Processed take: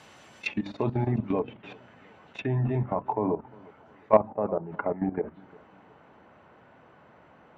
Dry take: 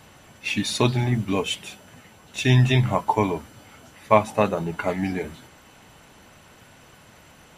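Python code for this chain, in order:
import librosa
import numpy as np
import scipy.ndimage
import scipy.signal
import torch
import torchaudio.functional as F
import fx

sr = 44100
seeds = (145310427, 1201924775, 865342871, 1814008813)

y = fx.highpass(x, sr, hz=230.0, slope=6)
y = fx.hum_notches(y, sr, base_hz=50, count=6)
y = fx.level_steps(y, sr, step_db=14)
y = fx.env_lowpass_down(y, sr, base_hz=900.0, full_db=-26.5)
y = fx.lowpass(y, sr, hz=fx.steps((0.0, 7000.0), (1.39, 2100.0), (3.12, 1300.0)), slope=12)
y = fx.echo_feedback(y, sr, ms=354, feedback_pct=39, wet_db=-24.0)
y = 10.0 ** (-6.5 / 20.0) * np.tanh(y / 10.0 ** (-6.5 / 20.0))
y = y * 10.0 ** (3.5 / 20.0)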